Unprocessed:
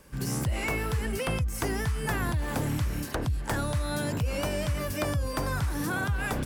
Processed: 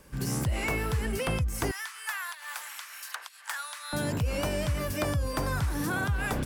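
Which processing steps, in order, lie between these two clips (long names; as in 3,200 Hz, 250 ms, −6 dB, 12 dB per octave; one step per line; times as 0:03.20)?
0:01.71–0:03.93: high-pass filter 1,100 Hz 24 dB per octave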